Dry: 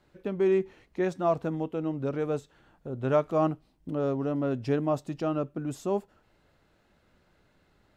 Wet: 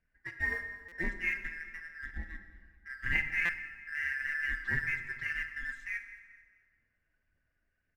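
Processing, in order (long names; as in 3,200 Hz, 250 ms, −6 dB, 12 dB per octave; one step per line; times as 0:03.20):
band-splitting scrambler in four parts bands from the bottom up 2143
noise reduction from a noise print of the clip's start 10 dB
RIAA equalisation playback
0:01.41–0:03.06: treble cut that deepens with the level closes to 880 Hz, closed at −28.5 dBFS
parametric band 200 Hz −6 dB 0.34 octaves
in parallel at −6 dB: dead-zone distortion −41 dBFS
on the sum: amplitude modulation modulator 260 Hz, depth 30%
phase shifter 1.9 Hz, delay 3.2 ms, feedback 36%
on a send: repeating echo 218 ms, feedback 37%, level −18.5 dB
on the sum: dense smooth reverb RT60 1.8 s, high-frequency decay 0.65×, DRR 7 dB
buffer that repeats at 0:00.88/0:03.45, samples 256, times 6
level −6.5 dB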